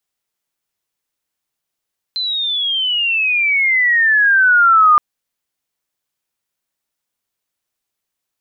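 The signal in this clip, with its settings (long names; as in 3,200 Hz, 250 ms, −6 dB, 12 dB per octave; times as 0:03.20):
glide logarithmic 4,100 Hz → 1,200 Hz −17.5 dBFS → −6 dBFS 2.82 s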